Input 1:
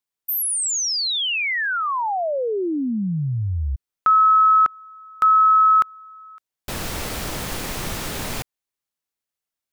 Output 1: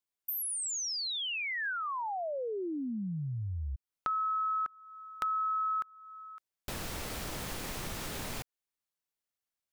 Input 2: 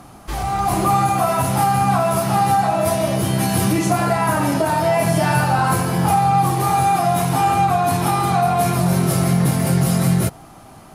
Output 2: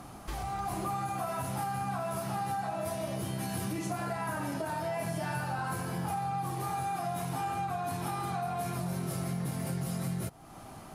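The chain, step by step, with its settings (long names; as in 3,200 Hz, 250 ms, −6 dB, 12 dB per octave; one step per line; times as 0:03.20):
dynamic equaliser 1,600 Hz, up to +4 dB, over −37 dBFS, Q 7
downward compressor 2.5 to 1, threshold −33 dBFS
level −5 dB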